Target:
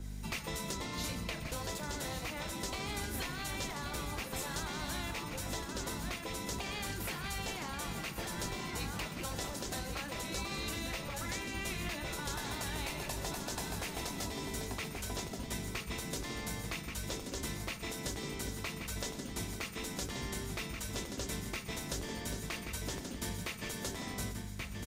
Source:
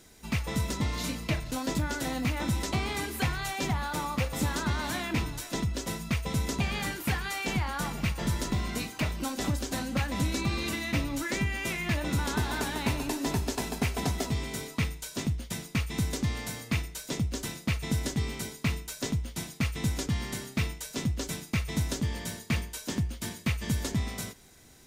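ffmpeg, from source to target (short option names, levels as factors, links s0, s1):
-filter_complex "[0:a]aeval=exprs='val(0)+0.00891*(sin(2*PI*50*n/s)+sin(2*PI*2*50*n/s)/2+sin(2*PI*3*50*n/s)/3+sin(2*PI*4*50*n/s)/4+sin(2*PI*5*50*n/s)/5)':c=same,asplit=2[s0][s1];[s1]aecho=0:1:1130:0.376[s2];[s0][s2]amix=inputs=2:normalize=0,afftfilt=real='re*lt(hypot(re,im),0.141)':imag='im*lt(hypot(re,im),0.141)':win_size=1024:overlap=0.75,acrossover=split=150|3000[s3][s4][s5];[s4]acompressor=threshold=0.0112:ratio=8[s6];[s3][s6][s5]amix=inputs=3:normalize=0,asplit=2[s7][s8];[s8]aecho=0:1:125|250:0.168|0.0386[s9];[s7][s9]amix=inputs=2:normalize=0,adynamicequalizer=threshold=0.00282:dfrequency=2000:dqfactor=0.7:tfrequency=2000:tqfactor=0.7:attack=5:release=100:ratio=0.375:range=2:mode=cutabove:tftype=highshelf"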